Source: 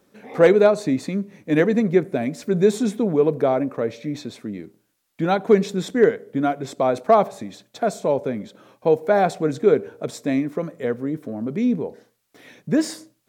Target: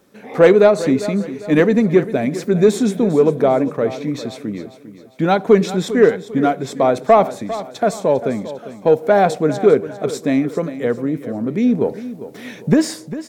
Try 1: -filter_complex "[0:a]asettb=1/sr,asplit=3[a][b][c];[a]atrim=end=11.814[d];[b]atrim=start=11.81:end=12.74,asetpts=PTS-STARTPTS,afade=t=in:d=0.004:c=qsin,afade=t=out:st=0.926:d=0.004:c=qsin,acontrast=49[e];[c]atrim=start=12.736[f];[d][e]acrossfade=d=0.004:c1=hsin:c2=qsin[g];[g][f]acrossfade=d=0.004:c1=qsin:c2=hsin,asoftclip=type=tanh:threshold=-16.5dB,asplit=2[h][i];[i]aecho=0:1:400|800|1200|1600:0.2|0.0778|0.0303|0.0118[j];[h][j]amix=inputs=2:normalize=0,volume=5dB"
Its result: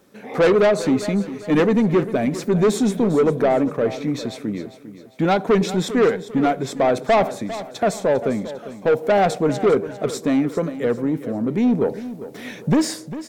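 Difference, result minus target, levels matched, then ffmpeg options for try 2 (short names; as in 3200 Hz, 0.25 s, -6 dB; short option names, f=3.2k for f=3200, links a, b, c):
soft clip: distortion +14 dB
-filter_complex "[0:a]asettb=1/sr,asplit=3[a][b][c];[a]atrim=end=11.814[d];[b]atrim=start=11.81:end=12.74,asetpts=PTS-STARTPTS,afade=t=in:d=0.004:c=qsin,afade=t=out:st=0.926:d=0.004:c=qsin,acontrast=49[e];[c]atrim=start=12.736[f];[d][e]acrossfade=d=0.004:c1=hsin:c2=qsin[g];[g][f]acrossfade=d=0.004:c1=qsin:c2=hsin,asoftclip=type=tanh:threshold=-5dB,asplit=2[h][i];[i]aecho=0:1:400|800|1200|1600:0.2|0.0778|0.0303|0.0118[j];[h][j]amix=inputs=2:normalize=0,volume=5dB"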